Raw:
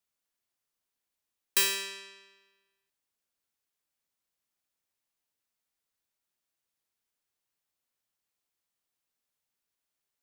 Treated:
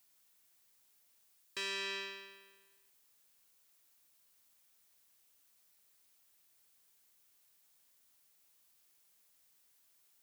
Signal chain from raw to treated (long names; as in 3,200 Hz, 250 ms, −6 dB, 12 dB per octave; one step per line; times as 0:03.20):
high-frequency loss of the air 130 metres
reversed playback
downward compressor 12 to 1, threshold −44 dBFS, peak gain reduction 18 dB
reversed playback
background noise blue −78 dBFS
level +7.5 dB